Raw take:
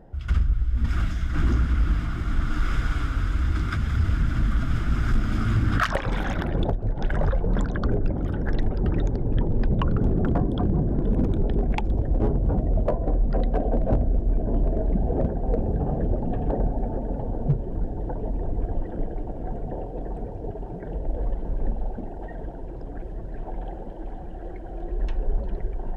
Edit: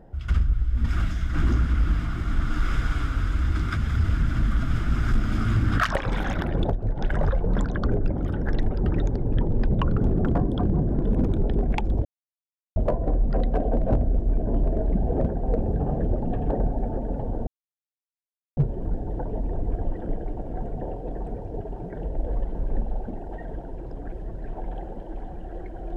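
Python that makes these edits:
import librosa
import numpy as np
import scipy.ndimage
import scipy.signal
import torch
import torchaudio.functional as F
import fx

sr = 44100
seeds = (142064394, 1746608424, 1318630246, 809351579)

y = fx.edit(x, sr, fx.silence(start_s=12.05, length_s=0.71),
    fx.insert_silence(at_s=17.47, length_s=1.1), tone=tone)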